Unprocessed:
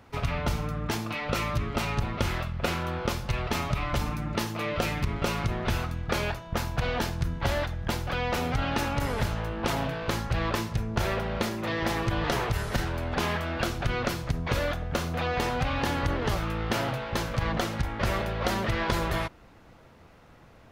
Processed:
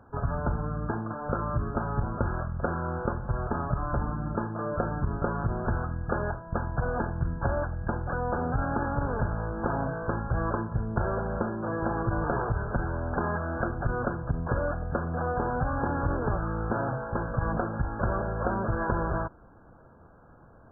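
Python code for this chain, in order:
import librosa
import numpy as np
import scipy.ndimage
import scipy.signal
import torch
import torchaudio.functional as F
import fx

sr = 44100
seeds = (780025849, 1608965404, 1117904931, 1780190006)

y = fx.brickwall_lowpass(x, sr, high_hz=1700.0)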